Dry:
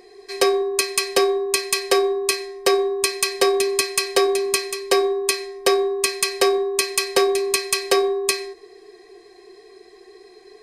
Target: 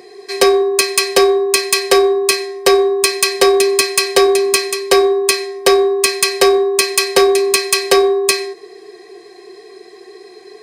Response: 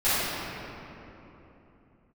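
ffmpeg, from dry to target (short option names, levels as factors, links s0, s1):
-af "highpass=f=96:w=0.5412,highpass=f=96:w=1.3066,acontrast=89,volume=1.12"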